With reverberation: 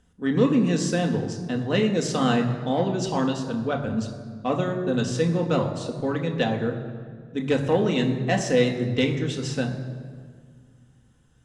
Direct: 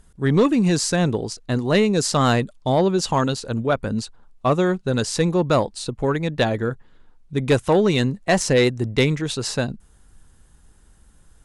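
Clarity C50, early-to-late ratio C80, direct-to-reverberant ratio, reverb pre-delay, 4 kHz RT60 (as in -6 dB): 8.5 dB, 9.5 dB, 2.0 dB, 3 ms, 1.2 s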